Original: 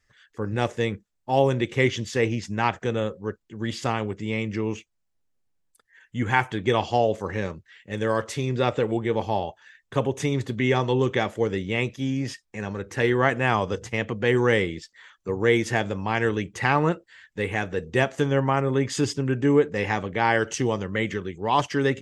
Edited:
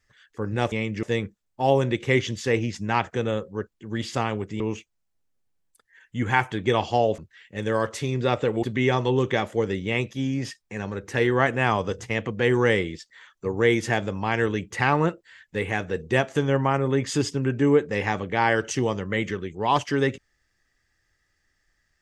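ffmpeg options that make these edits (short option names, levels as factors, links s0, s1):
-filter_complex "[0:a]asplit=6[s0][s1][s2][s3][s4][s5];[s0]atrim=end=0.722[s6];[s1]atrim=start=4.288:end=4.602[s7];[s2]atrim=start=0.718:end=4.292[s8];[s3]atrim=start=4.598:end=7.182[s9];[s4]atrim=start=7.528:end=8.982[s10];[s5]atrim=start=10.458[s11];[s6][s7]acrossfade=d=0.004:c1=hsin:c2=hsin[s12];[s12][s8]acrossfade=d=0.004:c1=hsin:c2=hsin[s13];[s13][s9]acrossfade=d=0.004:c1=hsin:c2=hsin[s14];[s14][s10]acrossfade=d=0.004:c1=hsin:c2=hsin[s15];[s15][s11]acrossfade=d=0.004:c1=hsin:c2=hsin"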